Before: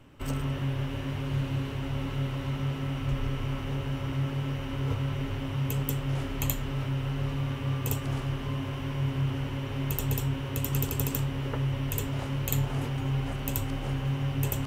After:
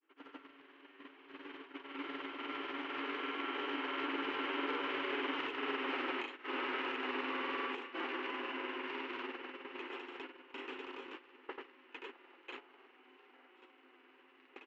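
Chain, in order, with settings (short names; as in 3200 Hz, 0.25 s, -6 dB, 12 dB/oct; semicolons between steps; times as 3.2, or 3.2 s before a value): Doppler pass-by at 5.64, 11 m/s, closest 8.6 m; short-mantissa float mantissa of 2-bit; Chebyshev high-pass 310 Hz, order 5; bell 600 Hz -14.5 dB 0.64 oct; doubler 50 ms -13.5 dB; echo 0.589 s -15.5 dB; grains 0.1 s, grains 20/s, pitch spread up and down by 0 st; compressor 12:1, threshold -49 dBFS, peak gain reduction 18.5 dB; gate -57 dBFS, range -15 dB; LPF 2700 Hz 24 dB/oct; gain +17 dB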